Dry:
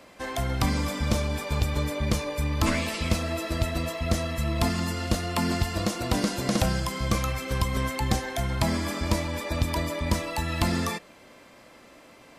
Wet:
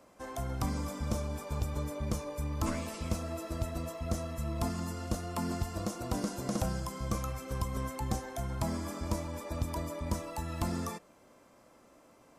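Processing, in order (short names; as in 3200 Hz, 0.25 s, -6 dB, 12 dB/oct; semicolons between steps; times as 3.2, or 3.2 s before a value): band shelf 2800 Hz -8 dB; gain -8 dB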